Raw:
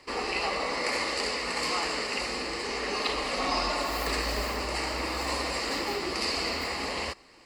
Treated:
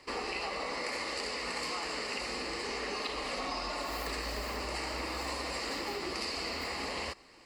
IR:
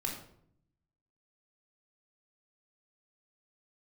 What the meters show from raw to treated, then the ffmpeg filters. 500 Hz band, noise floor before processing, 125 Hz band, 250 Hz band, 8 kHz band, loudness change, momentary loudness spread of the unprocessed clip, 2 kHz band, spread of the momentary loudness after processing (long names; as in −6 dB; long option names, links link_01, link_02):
−6.0 dB, −48 dBFS, −6.0 dB, −6.0 dB, −6.0 dB, −6.0 dB, 3 LU, −6.0 dB, 1 LU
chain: -af "acompressor=threshold=-31dB:ratio=6,volume=-2dB"